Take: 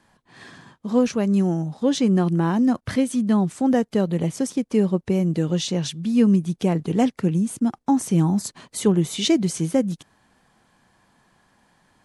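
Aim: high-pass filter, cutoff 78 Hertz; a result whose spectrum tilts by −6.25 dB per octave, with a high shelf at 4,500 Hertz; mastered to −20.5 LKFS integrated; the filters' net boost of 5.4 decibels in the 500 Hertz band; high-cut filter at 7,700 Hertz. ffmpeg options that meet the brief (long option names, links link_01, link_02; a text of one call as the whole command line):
ffmpeg -i in.wav -af "highpass=78,lowpass=7700,equalizer=frequency=500:width_type=o:gain=6.5,highshelf=frequency=4500:gain=5,volume=-1dB" out.wav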